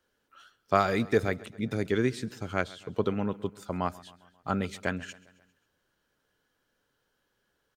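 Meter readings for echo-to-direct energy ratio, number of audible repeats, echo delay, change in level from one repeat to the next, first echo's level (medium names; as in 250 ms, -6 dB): -19.5 dB, 3, 134 ms, -5.0 dB, -21.0 dB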